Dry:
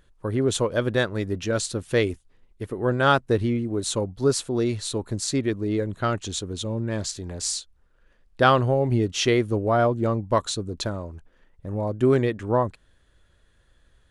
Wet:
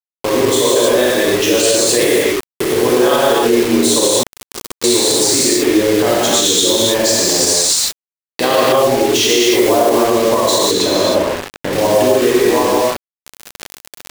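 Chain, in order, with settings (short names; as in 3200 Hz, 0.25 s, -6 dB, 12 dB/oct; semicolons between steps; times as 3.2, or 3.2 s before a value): recorder AGC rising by 61 dB/s; 9.06–9.75 short-mantissa float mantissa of 2-bit; HPF 390 Hz 12 dB/oct; bell 1400 Hz -13.5 dB 0.27 oct; non-linear reverb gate 0.34 s flat, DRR -7.5 dB; 4.23–4.84 gate -7 dBFS, range -16 dB; bit-crush 4-bit; 10.71–11.73 high shelf 4600 Hz -7.5 dB; maximiser +5 dB; gain -2 dB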